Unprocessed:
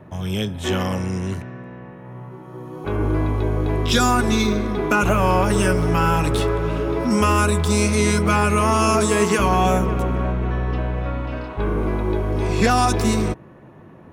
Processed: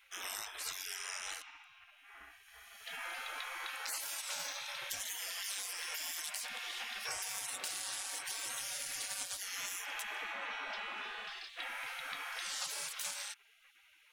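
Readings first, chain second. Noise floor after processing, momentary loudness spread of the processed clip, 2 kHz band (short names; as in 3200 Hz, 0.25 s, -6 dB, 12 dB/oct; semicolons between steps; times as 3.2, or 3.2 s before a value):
-65 dBFS, 8 LU, -15.0 dB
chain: spectral gate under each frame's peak -30 dB weak; low shelf 150 Hz -4.5 dB; compressor, threshold -42 dBFS, peak gain reduction 12.5 dB; gain +4.5 dB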